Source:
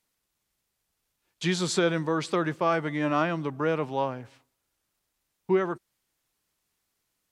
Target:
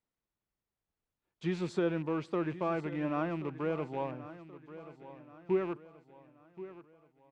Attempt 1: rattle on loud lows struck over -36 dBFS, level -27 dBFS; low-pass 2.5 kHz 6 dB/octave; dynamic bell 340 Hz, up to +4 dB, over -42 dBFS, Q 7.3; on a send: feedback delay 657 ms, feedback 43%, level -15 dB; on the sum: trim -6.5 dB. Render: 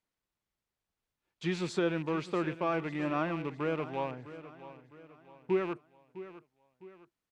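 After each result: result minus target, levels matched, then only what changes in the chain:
echo 422 ms early; 2 kHz band +3.5 dB
change: feedback delay 1079 ms, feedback 43%, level -15 dB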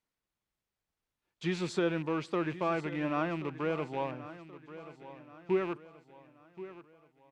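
2 kHz band +3.5 dB
change: low-pass 980 Hz 6 dB/octave

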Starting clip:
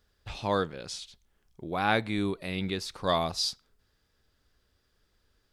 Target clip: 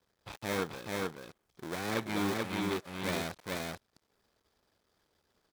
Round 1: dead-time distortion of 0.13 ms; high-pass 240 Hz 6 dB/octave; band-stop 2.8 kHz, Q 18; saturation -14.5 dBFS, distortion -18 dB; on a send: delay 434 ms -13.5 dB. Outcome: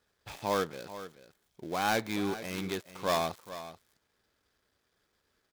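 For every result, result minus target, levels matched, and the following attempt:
echo-to-direct -11.5 dB; dead-time distortion: distortion -9 dB
dead-time distortion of 0.13 ms; high-pass 240 Hz 6 dB/octave; band-stop 2.8 kHz, Q 18; saturation -14.5 dBFS, distortion -18 dB; on a send: delay 434 ms -2 dB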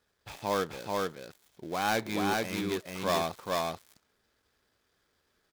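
dead-time distortion: distortion -9 dB
dead-time distortion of 0.47 ms; high-pass 240 Hz 6 dB/octave; band-stop 2.8 kHz, Q 18; saturation -14.5 dBFS, distortion -29 dB; on a send: delay 434 ms -2 dB

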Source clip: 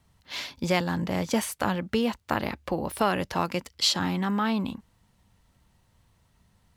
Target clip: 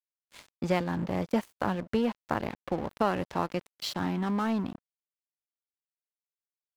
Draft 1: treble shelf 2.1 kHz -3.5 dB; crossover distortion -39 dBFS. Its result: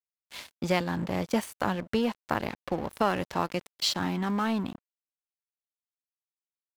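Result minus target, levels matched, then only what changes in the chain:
4 kHz band +6.0 dB
change: treble shelf 2.1 kHz -11.5 dB

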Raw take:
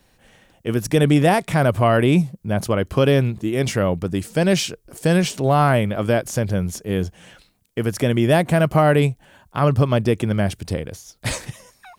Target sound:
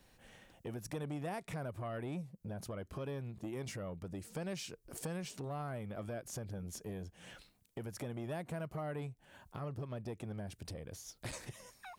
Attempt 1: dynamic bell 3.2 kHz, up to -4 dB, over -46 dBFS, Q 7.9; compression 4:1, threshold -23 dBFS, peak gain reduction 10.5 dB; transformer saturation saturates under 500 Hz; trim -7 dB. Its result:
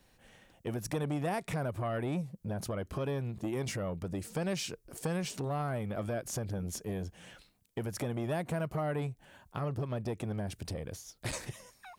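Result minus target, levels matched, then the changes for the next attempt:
compression: peak gain reduction -7.5 dB
change: compression 4:1, threshold -33 dBFS, peak gain reduction 18 dB

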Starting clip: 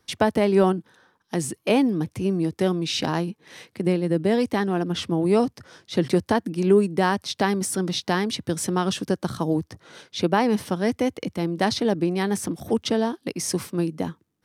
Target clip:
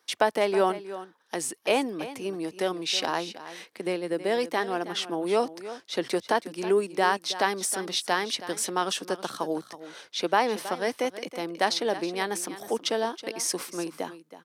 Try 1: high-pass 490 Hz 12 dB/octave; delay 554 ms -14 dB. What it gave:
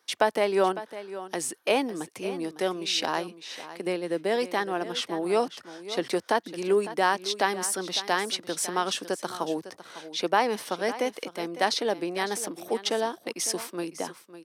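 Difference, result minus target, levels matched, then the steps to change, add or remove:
echo 232 ms late
change: delay 322 ms -14 dB

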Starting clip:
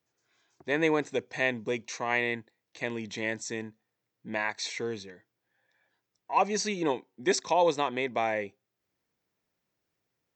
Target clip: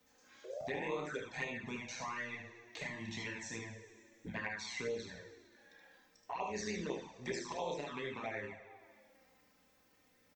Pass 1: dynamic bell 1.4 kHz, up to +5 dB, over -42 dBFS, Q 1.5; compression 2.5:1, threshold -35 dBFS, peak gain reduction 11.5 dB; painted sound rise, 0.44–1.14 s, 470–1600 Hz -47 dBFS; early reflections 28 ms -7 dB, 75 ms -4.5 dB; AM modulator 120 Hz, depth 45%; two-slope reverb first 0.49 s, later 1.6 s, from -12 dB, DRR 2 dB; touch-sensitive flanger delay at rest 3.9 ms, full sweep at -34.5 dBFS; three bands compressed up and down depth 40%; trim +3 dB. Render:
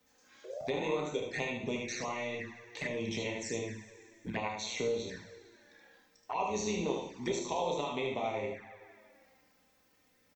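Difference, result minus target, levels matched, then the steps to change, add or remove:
compression: peak gain reduction -5.5 dB
change: compression 2.5:1, threshold -44.5 dBFS, peak gain reduction 17.5 dB

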